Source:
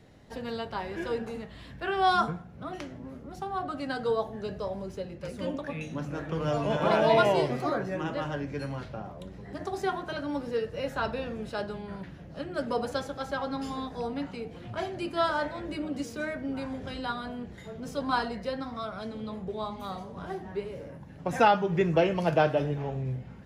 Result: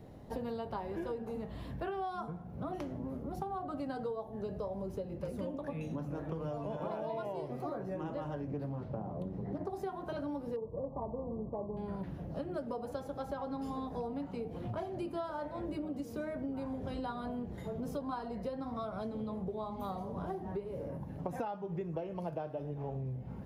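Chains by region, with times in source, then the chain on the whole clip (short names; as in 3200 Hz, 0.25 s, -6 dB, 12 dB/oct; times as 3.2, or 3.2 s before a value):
8.47–9.7 HPF 130 Hz + tilt -2.5 dB/oct + Doppler distortion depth 0.3 ms
10.56–11.77 sample sorter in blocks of 16 samples + brick-wall FIR low-pass 1200 Hz
whole clip: band shelf 3500 Hz -10.5 dB 3 oct; compressor 16:1, threshold -39 dBFS; gain +4 dB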